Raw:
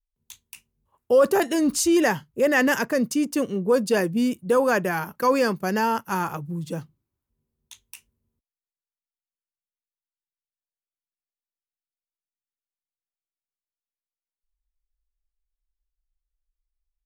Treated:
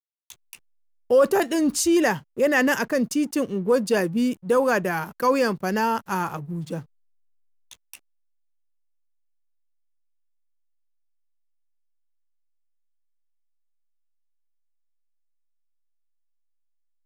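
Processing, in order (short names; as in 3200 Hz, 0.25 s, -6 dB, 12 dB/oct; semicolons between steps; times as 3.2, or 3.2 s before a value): backlash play -43.5 dBFS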